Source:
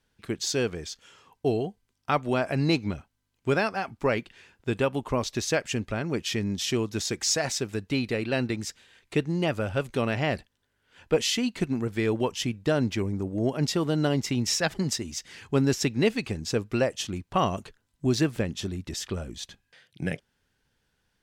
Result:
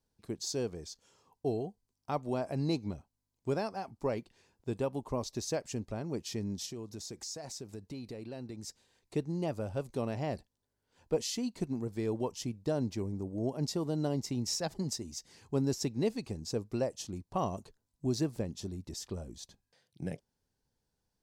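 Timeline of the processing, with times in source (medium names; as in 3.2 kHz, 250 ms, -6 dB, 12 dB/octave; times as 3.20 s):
6.66–8.68 s: compression 3:1, threshold -33 dBFS
whole clip: high-order bell 2.1 kHz -10.5 dB; trim -7.5 dB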